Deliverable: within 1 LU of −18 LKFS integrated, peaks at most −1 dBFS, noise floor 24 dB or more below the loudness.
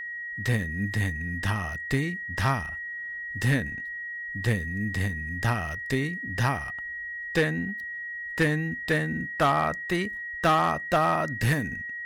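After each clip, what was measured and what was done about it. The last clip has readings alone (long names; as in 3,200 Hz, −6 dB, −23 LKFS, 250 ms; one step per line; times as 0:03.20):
share of clipped samples 0.5%; peaks flattened at −16.0 dBFS; interfering tone 1,900 Hz; level of the tone −33 dBFS; integrated loudness −27.5 LKFS; sample peak −16.0 dBFS; target loudness −18.0 LKFS
→ clipped peaks rebuilt −16 dBFS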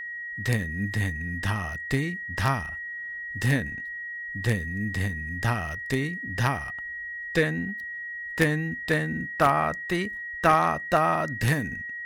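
share of clipped samples 0.0%; interfering tone 1,900 Hz; level of the tone −33 dBFS
→ notch filter 1,900 Hz, Q 30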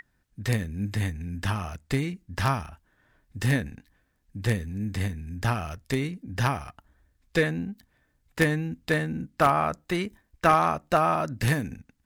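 interfering tone none found; integrated loudness −27.5 LKFS; sample peak −6.5 dBFS; target loudness −18.0 LKFS
→ level +9.5 dB
brickwall limiter −1 dBFS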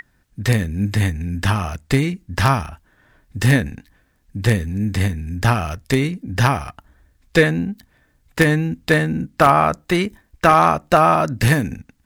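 integrated loudness −18.5 LKFS; sample peak −1.0 dBFS; background noise floor −61 dBFS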